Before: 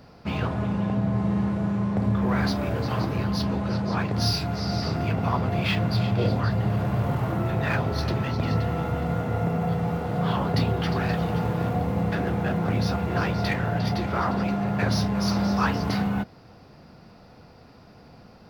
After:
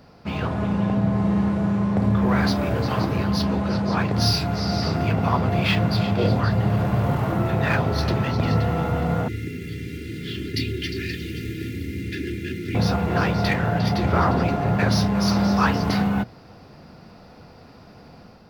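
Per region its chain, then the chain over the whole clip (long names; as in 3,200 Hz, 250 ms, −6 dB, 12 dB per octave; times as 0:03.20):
0:09.28–0:12.75: Chebyshev band-stop filter 360–2,000 Hz, order 3 + low-shelf EQ 320 Hz −6.5 dB + comb filter 2.9 ms
0:14.03–0:14.76: low-shelf EQ 430 Hz +6.5 dB + mains-hum notches 50/100/150/200/250/300/350 Hz
whole clip: mains-hum notches 60/120 Hz; automatic gain control gain up to 4 dB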